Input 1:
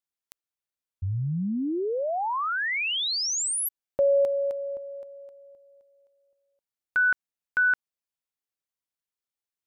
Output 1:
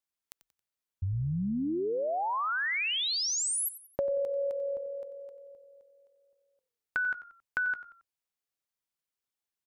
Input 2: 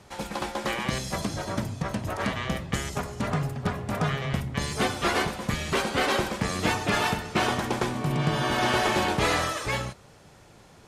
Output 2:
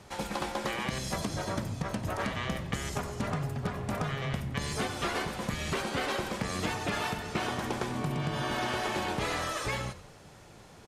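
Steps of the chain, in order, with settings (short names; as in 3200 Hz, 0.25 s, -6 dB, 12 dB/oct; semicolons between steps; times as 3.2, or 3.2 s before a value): compressor, threshold -29 dBFS; on a send: frequency-shifting echo 91 ms, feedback 37%, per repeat -41 Hz, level -15 dB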